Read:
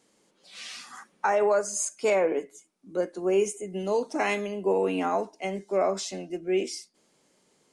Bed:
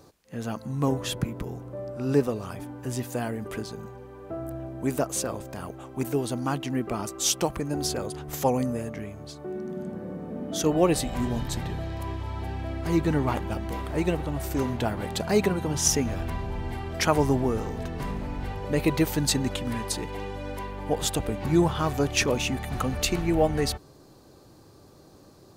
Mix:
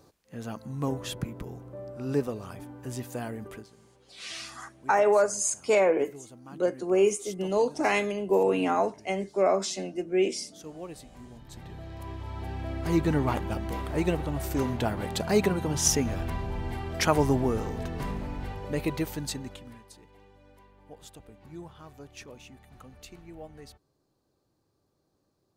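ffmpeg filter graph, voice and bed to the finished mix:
-filter_complex "[0:a]adelay=3650,volume=1.5dB[a];[1:a]volume=13.5dB,afade=t=out:st=3.44:d=0.25:silence=0.188365,afade=t=in:st=11.41:d=1.41:silence=0.11885,afade=t=out:st=18.01:d=1.83:silence=0.0891251[b];[a][b]amix=inputs=2:normalize=0"

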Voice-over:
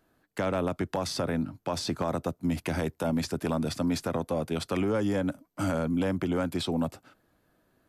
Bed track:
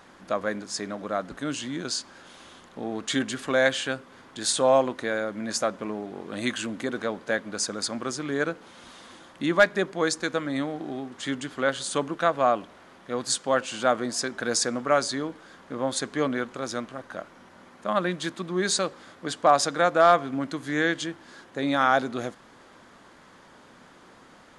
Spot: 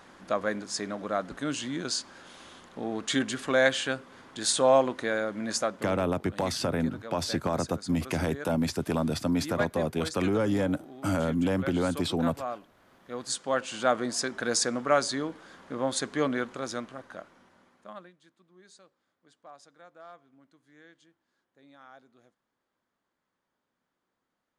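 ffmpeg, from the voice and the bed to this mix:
-filter_complex "[0:a]adelay=5450,volume=1dB[a];[1:a]volume=10.5dB,afade=t=out:st=5.52:d=0.52:silence=0.251189,afade=t=in:st=12.73:d=1.28:silence=0.266073,afade=t=out:st=16.43:d=1.69:silence=0.0334965[b];[a][b]amix=inputs=2:normalize=0"

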